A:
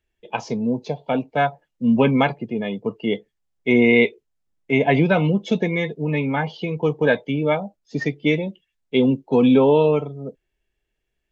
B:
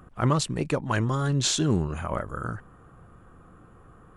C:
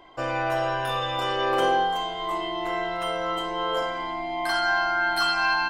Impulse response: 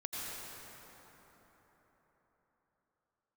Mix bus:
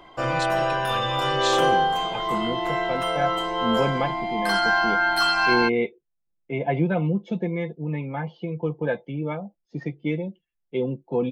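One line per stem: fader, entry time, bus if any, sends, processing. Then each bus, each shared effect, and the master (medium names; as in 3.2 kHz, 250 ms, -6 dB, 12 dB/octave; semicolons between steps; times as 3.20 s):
-7.0 dB, 1.80 s, no send, low-pass 1.2 kHz 6 dB/octave; comb 5.8 ms, depth 54%
-13.0 dB, 0.00 s, no send, peaking EQ 3.2 kHz +13.5 dB 1.1 oct; comb 5.7 ms
+2.5 dB, 0.00 s, no send, none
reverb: none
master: none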